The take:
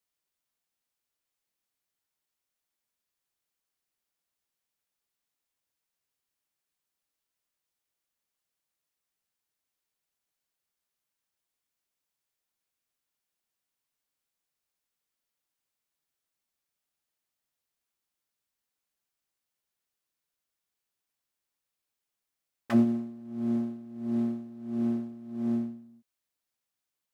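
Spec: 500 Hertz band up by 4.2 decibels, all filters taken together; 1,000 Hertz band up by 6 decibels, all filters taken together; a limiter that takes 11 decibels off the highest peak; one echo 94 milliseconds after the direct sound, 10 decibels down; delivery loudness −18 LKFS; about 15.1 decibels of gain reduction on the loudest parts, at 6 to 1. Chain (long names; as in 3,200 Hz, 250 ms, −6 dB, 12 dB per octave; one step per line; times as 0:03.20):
parametric band 500 Hz +5.5 dB
parametric band 1,000 Hz +6 dB
downward compressor 6 to 1, threshold −33 dBFS
brickwall limiter −30.5 dBFS
single-tap delay 94 ms −10 dB
level +19.5 dB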